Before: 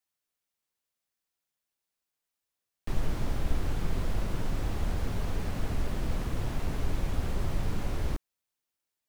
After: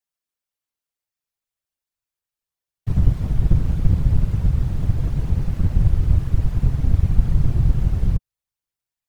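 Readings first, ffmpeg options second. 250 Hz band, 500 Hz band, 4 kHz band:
+9.5 dB, +0.5 dB, can't be measured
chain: -af "asubboost=boost=8.5:cutoff=55,afftfilt=real='hypot(re,im)*cos(2*PI*random(0))':imag='hypot(re,im)*sin(2*PI*random(1))':win_size=512:overlap=0.75,volume=3dB"

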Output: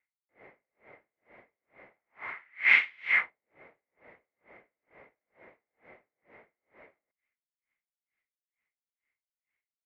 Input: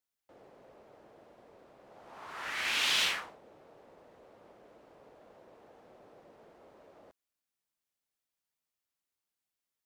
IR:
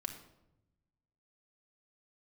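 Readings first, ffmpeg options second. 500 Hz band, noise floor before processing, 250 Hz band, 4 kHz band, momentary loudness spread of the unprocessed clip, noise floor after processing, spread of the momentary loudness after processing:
−5.0 dB, below −85 dBFS, can't be measured, −11.5 dB, 22 LU, below −85 dBFS, 20 LU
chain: -af "lowpass=frequency=2100:width_type=q:width=14,aeval=exprs='val(0)*pow(10,-40*(0.5-0.5*cos(2*PI*2.2*n/s))/20)':channel_layout=same,volume=2dB"

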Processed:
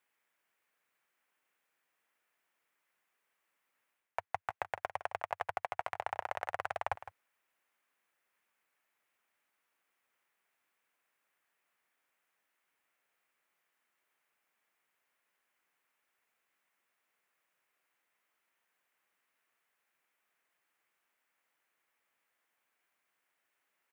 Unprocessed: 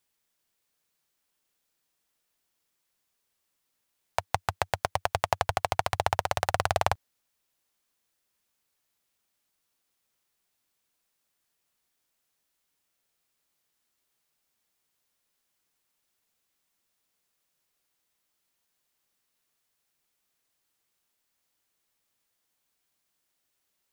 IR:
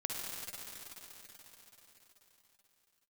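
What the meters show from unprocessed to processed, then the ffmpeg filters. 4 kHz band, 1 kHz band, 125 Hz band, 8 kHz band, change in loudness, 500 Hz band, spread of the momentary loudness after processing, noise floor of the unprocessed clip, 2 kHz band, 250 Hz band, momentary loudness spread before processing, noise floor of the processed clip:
−18.0 dB, −9.5 dB, −22.0 dB, −22.0 dB, −10.0 dB, −10.5 dB, 4 LU, −79 dBFS, −8.0 dB, below −15 dB, 5 LU, −83 dBFS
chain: -af "highpass=frequency=620:poles=1,highshelf=frequency=3000:width_type=q:width=1.5:gain=-11,areverse,acompressor=threshold=-38dB:ratio=4,areverse,aecho=1:1:160:0.2,volume=3.5dB"

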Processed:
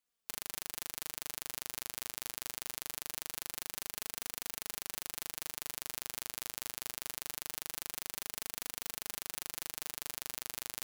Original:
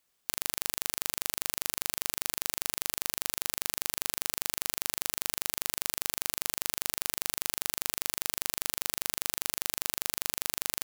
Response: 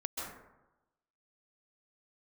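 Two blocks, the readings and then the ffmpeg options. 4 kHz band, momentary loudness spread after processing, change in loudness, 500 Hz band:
−8.5 dB, 0 LU, −8.5 dB, −8.0 dB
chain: -af "flanger=delay=4:depth=4.7:regen=6:speed=0.23:shape=triangular,aeval=exprs='0.501*(cos(1*acos(clip(val(0)/0.501,-1,1)))-cos(1*PI/2))+0.2*(cos(2*acos(clip(val(0)/0.501,-1,1)))-cos(2*PI/2))+0.0631*(cos(8*acos(clip(val(0)/0.501,-1,1)))-cos(8*PI/2))':channel_layout=same,volume=-8dB"

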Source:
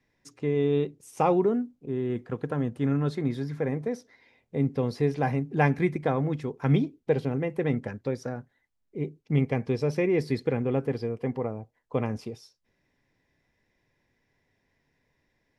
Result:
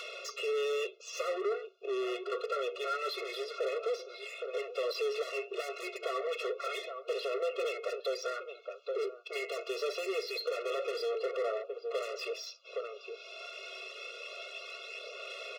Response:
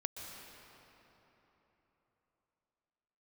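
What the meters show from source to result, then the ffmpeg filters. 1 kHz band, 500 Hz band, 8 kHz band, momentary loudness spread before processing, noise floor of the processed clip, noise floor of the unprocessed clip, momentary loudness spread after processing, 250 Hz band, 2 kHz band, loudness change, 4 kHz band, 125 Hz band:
−6.0 dB, −4.5 dB, can't be measured, 10 LU, −53 dBFS, −75 dBFS, 9 LU, below −20 dB, −1.5 dB, −8.5 dB, +8.5 dB, below −40 dB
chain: -filter_complex "[0:a]asplit=2[link_01][link_02];[link_02]adelay=816.3,volume=-22dB,highshelf=frequency=4000:gain=-18.4[link_03];[link_01][link_03]amix=inputs=2:normalize=0,aresample=16000,aresample=44100,acompressor=mode=upward:threshold=-33dB:ratio=2.5,highpass=110,highshelf=frequency=1500:width_type=q:width=1.5:gain=6.5,aphaser=in_gain=1:out_gain=1:delay=2.9:decay=0.35:speed=0.26:type=sinusoidal,asuperstop=centerf=1900:order=20:qfactor=3.6,acrossover=split=510 4800:gain=0.141 1 0.0891[link_04][link_05][link_06];[link_04][link_05][link_06]amix=inputs=3:normalize=0,flanger=delay=6.2:depth=1.9:regen=-80:speed=1.2:shape=triangular,acompressor=threshold=-38dB:ratio=2.5,asplit=2[link_07][link_08];[link_08]highpass=frequency=720:poles=1,volume=29dB,asoftclip=type=tanh:threshold=-26.5dB[link_09];[link_07][link_09]amix=inputs=2:normalize=0,lowpass=frequency=2600:poles=1,volume=-6dB,afftfilt=real='re*eq(mod(floor(b*sr/1024/360),2),1)':imag='im*eq(mod(floor(b*sr/1024/360),2),1)':win_size=1024:overlap=0.75,volume=2.5dB"

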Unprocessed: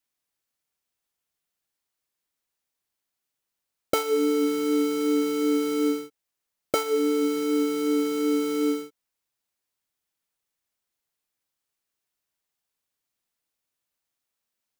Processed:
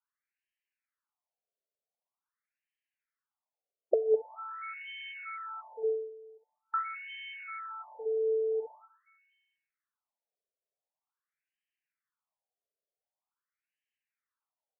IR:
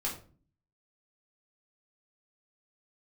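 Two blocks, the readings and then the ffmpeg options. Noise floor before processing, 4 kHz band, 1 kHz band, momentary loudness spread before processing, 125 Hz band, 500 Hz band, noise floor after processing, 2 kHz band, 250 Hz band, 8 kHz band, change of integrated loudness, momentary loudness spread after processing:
−84 dBFS, −13.5 dB, −5.0 dB, 5 LU, can't be measured, −6.5 dB, below −85 dBFS, −5.0 dB, below −35 dB, below −40 dB, −9.5 dB, 13 LU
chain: -af "acrusher=bits=7:mode=log:mix=0:aa=0.000001,aecho=1:1:204|408|612|816:0.126|0.0579|0.0266|0.0123,afftfilt=real='re*between(b*sr/1024,490*pow(2300/490,0.5+0.5*sin(2*PI*0.45*pts/sr))/1.41,490*pow(2300/490,0.5+0.5*sin(2*PI*0.45*pts/sr))*1.41)':imag='im*between(b*sr/1024,490*pow(2300/490,0.5+0.5*sin(2*PI*0.45*pts/sr))/1.41,490*pow(2300/490,0.5+0.5*sin(2*PI*0.45*pts/sr))*1.41)':win_size=1024:overlap=0.75"

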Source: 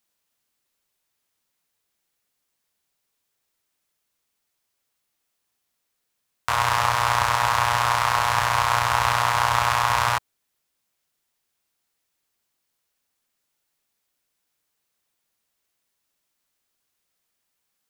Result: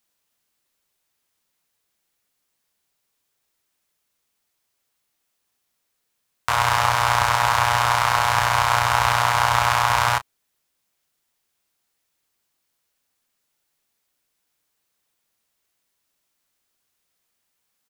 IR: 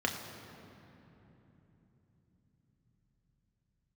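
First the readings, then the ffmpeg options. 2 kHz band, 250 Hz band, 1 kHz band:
+2.5 dB, +2.0 dB, +2.0 dB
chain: -filter_complex "[0:a]asplit=2[link_01][link_02];[link_02]adelay=32,volume=-14dB[link_03];[link_01][link_03]amix=inputs=2:normalize=0,volume=2dB"

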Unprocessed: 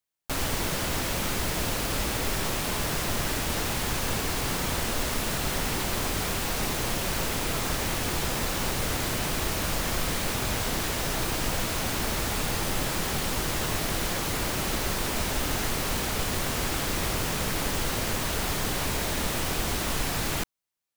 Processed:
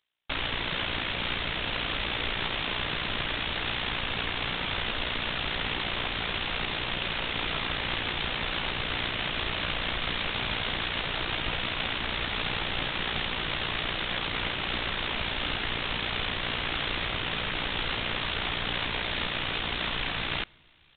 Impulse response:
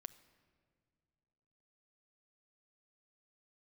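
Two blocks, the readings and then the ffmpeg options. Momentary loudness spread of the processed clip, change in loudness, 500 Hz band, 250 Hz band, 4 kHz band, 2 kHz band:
1 LU, −1.5 dB, −5.0 dB, −6.0 dB, +3.0 dB, +2.5 dB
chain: -filter_complex "[0:a]crystalizer=i=8.5:c=0,areverse,acompressor=mode=upward:threshold=-22dB:ratio=2.5,areverse,tremolo=f=59:d=0.71,alimiter=limit=-10.5dB:level=0:latency=1:release=24,asplit=2[link_01][link_02];[1:a]atrim=start_sample=2205[link_03];[link_02][link_03]afir=irnorm=-1:irlink=0,volume=-3.5dB[link_04];[link_01][link_04]amix=inputs=2:normalize=0,aresample=8000,aresample=44100"

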